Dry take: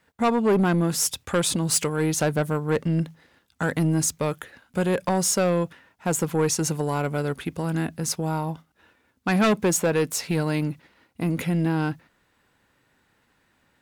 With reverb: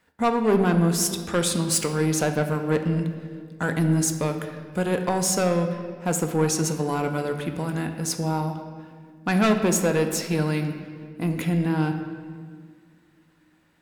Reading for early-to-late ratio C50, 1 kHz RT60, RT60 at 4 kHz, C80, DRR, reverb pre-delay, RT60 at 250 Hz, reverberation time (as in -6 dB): 7.5 dB, 1.7 s, 1.3 s, 9.0 dB, 5.5 dB, 3 ms, 2.9 s, 1.9 s